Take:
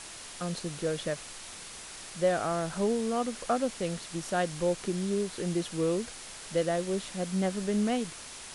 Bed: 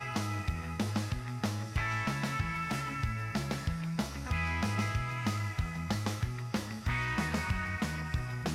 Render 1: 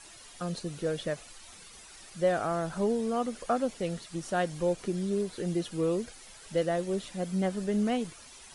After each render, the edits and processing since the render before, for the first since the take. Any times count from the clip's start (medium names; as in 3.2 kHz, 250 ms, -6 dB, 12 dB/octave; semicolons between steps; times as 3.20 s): noise reduction 11 dB, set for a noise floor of -45 dBFS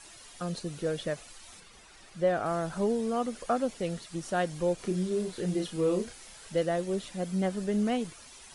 1.60–2.46 s: treble shelf 5.2 kHz -10.5 dB; 4.76–6.49 s: doubling 33 ms -5.5 dB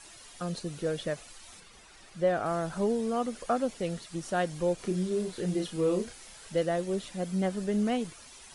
no audible change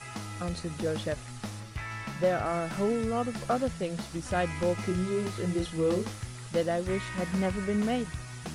add bed -5 dB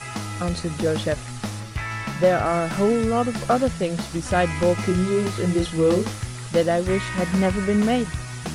trim +8.5 dB